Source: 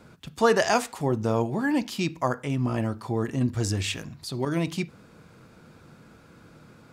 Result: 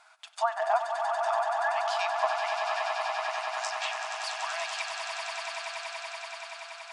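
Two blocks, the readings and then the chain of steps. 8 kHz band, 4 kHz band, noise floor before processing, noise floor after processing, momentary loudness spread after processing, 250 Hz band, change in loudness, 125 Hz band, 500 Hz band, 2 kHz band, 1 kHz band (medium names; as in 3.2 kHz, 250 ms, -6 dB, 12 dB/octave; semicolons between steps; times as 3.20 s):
-4.0 dB, +0.5 dB, -53 dBFS, -50 dBFS, 10 LU, under -40 dB, -4.0 dB, under -40 dB, -4.5 dB, +1.0 dB, +3.5 dB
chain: FFT band-pass 630–11000 Hz; low-pass that closes with the level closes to 1 kHz, closed at -24.5 dBFS; echo with a slow build-up 95 ms, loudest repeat 8, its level -8 dB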